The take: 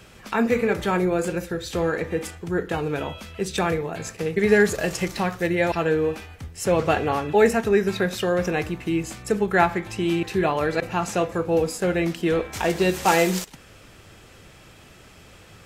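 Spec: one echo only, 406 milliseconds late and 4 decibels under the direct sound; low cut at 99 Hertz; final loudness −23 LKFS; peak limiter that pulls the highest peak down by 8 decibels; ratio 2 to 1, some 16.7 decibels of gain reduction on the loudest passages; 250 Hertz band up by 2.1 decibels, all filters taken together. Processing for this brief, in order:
high-pass filter 99 Hz
parametric band 250 Hz +3.5 dB
downward compressor 2 to 1, threshold −43 dBFS
brickwall limiter −27 dBFS
single-tap delay 406 ms −4 dB
level +14 dB

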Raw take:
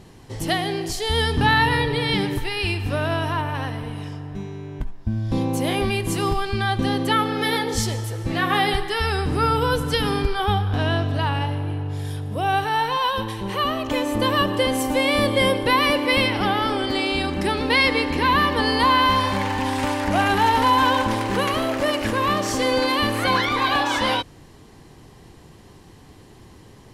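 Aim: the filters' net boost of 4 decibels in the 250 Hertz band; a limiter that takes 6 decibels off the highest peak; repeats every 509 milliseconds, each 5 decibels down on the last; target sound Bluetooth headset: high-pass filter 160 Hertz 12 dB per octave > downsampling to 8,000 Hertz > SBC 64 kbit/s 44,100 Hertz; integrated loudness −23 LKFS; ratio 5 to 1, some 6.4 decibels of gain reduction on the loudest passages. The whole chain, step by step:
parametric band 250 Hz +5.5 dB
downward compressor 5 to 1, threshold −20 dBFS
brickwall limiter −16.5 dBFS
high-pass filter 160 Hz 12 dB per octave
repeating echo 509 ms, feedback 56%, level −5 dB
downsampling to 8,000 Hz
level +2 dB
SBC 64 kbit/s 44,100 Hz

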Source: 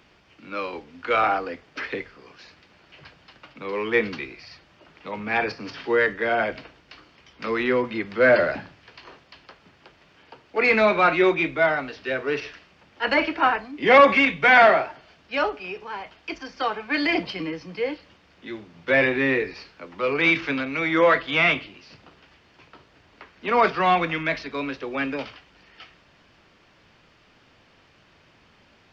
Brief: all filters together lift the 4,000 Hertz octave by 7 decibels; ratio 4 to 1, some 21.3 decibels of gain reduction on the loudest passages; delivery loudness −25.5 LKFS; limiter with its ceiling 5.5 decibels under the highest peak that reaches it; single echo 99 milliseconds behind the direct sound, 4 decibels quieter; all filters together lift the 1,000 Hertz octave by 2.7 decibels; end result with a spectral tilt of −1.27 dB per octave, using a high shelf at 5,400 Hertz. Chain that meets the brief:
parametric band 1,000 Hz +3 dB
parametric band 4,000 Hz +7 dB
high-shelf EQ 5,400 Hz +6 dB
downward compressor 4 to 1, threshold −33 dBFS
brickwall limiter −24.5 dBFS
single-tap delay 99 ms −4 dB
level +9 dB

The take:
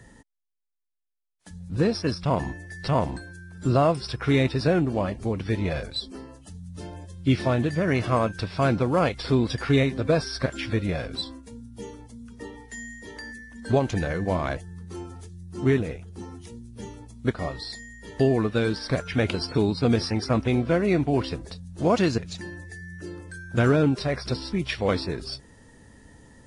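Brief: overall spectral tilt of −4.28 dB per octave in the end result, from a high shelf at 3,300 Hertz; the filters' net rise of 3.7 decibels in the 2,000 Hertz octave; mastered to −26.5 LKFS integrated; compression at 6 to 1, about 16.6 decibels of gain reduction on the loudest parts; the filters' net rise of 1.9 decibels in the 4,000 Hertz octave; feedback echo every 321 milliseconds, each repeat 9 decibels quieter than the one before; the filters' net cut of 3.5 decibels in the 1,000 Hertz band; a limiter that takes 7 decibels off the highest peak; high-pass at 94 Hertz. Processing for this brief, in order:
high-pass filter 94 Hz
parametric band 1,000 Hz −6.5 dB
parametric band 2,000 Hz +7.5 dB
high-shelf EQ 3,300 Hz −7.5 dB
parametric band 4,000 Hz +6 dB
downward compressor 6 to 1, threshold −35 dBFS
brickwall limiter −28.5 dBFS
repeating echo 321 ms, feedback 35%, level −9 dB
level +13 dB

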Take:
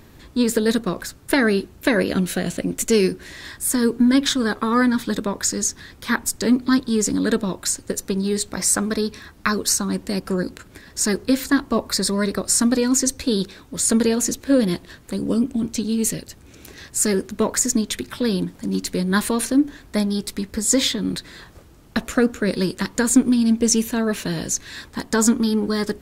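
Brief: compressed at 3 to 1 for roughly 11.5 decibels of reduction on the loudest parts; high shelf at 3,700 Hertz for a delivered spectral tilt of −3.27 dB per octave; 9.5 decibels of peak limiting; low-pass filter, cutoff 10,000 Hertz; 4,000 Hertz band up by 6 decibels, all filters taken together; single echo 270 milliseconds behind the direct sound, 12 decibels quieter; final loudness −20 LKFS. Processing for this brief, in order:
low-pass filter 10,000 Hz
high-shelf EQ 3,700 Hz +5 dB
parametric band 4,000 Hz +4 dB
downward compressor 3 to 1, threshold −26 dBFS
brickwall limiter −18 dBFS
single-tap delay 270 ms −12 dB
level +8.5 dB

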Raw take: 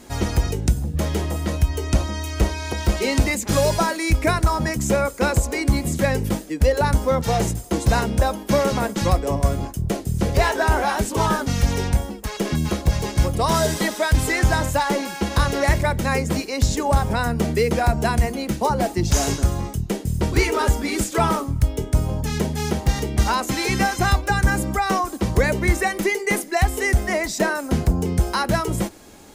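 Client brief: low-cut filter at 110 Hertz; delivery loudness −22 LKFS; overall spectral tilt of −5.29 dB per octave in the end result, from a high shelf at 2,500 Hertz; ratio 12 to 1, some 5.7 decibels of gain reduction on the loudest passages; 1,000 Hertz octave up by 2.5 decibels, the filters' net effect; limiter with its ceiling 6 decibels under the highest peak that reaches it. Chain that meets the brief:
high-pass filter 110 Hz
parametric band 1,000 Hz +4 dB
high-shelf EQ 2,500 Hz −5 dB
downward compressor 12 to 1, threshold −20 dBFS
level +5.5 dB
brickwall limiter −11.5 dBFS

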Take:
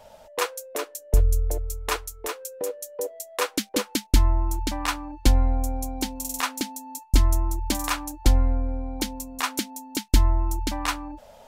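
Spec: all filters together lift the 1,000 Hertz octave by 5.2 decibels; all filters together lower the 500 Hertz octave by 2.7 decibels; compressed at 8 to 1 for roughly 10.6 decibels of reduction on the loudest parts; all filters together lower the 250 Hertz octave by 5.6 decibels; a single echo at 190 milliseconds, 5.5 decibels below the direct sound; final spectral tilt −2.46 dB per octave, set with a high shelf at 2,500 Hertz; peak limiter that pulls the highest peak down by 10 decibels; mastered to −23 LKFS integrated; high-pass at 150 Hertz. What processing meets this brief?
high-pass filter 150 Hz
parametric band 250 Hz −5.5 dB
parametric band 500 Hz −3.5 dB
parametric band 1,000 Hz +6.5 dB
high-shelf EQ 2,500 Hz +4.5 dB
downward compressor 8 to 1, threshold −28 dBFS
brickwall limiter −20.5 dBFS
single-tap delay 190 ms −5.5 dB
level +11 dB

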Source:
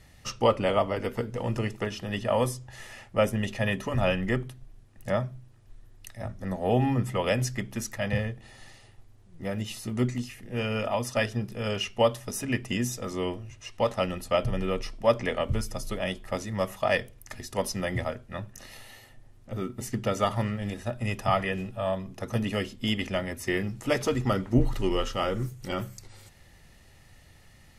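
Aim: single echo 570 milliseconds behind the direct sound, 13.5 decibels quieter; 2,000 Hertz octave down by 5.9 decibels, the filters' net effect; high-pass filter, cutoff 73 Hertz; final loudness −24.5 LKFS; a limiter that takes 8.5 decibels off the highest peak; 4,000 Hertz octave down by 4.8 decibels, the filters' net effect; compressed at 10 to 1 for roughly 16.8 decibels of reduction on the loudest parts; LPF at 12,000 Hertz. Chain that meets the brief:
high-pass filter 73 Hz
low-pass filter 12,000 Hz
parametric band 2,000 Hz −6 dB
parametric band 4,000 Hz −4 dB
downward compressor 10 to 1, threshold −34 dBFS
brickwall limiter −30 dBFS
single-tap delay 570 ms −13.5 dB
level +17 dB

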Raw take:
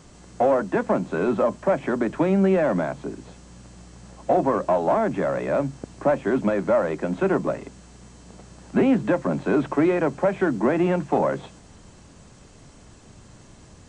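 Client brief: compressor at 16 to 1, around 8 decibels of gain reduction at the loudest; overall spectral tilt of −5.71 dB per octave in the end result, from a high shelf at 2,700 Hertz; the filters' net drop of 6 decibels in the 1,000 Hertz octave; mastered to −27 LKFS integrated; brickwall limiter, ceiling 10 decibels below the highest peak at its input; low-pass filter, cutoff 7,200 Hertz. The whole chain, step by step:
low-pass filter 7,200 Hz
parametric band 1,000 Hz −8 dB
high-shelf EQ 2,700 Hz −6.5 dB
downward compressor 16 to 1, threshold −24 dBFS
level +7 dB
brickwall limiter −18 dBFS

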